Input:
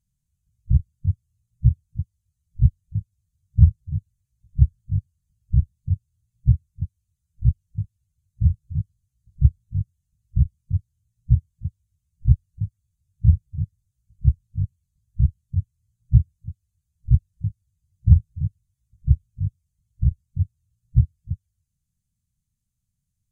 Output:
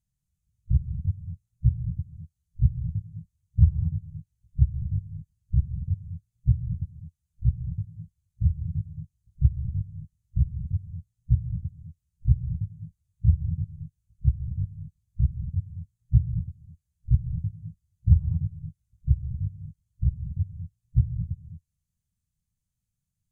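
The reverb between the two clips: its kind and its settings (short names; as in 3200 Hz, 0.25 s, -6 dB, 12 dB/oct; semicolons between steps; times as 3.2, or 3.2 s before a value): non-linear reverb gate 0.26 s rising, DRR 5.5 dB; gain -5 dB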